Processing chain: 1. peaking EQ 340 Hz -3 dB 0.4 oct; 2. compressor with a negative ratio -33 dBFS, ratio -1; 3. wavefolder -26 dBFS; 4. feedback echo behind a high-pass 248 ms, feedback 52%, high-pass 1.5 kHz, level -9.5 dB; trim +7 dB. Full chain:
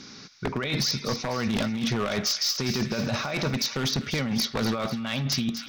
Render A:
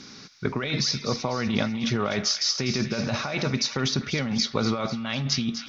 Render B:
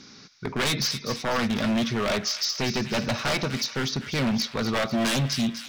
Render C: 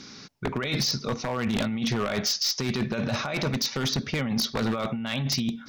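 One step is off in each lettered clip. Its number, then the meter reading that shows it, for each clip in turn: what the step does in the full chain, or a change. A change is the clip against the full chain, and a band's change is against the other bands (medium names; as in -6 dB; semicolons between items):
3, distortion -10 dB; 2, 1 kHz band +2.0 dB; 4, echo-to-direct -11.0 dB to none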